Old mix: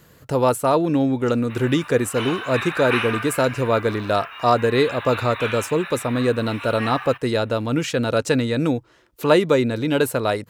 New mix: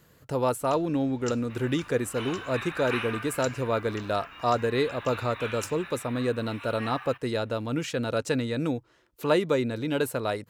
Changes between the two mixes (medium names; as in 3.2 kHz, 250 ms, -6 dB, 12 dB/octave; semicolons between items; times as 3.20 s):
speech -7.5 dB; first sound +8.5 dB; second sound -9.0 dB